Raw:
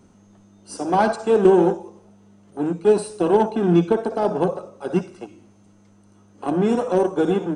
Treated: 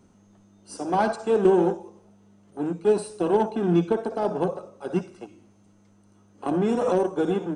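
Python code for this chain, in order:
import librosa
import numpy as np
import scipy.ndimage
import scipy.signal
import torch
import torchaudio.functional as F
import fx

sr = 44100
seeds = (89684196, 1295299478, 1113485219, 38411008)

y = fx.pre_swell(x, sr, db_per_s=26.0, at=(6.46, 7.05))
y = y * 10.0 ** (-4.5 / 20.0)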